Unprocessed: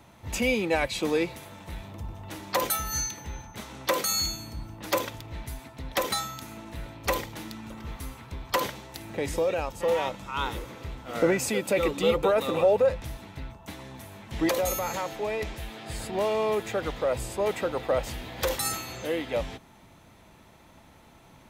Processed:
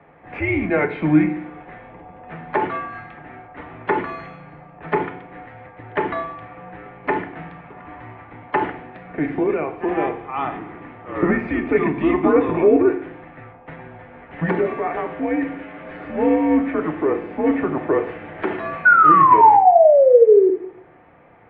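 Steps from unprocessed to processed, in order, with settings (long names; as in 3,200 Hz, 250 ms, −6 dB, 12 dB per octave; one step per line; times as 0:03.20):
single-sideband voice off tune −150 Hz 290–2,400 Hz
sound drawn into the spectrogram fall, 0:18.85–0:20.50, 360–1,500 Hz −18 dBFS
feedback delay network reverb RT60 0.61 s, low-frequency decay 1.3×, high-frequency decay 1×, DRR 5 dB
level +6 dB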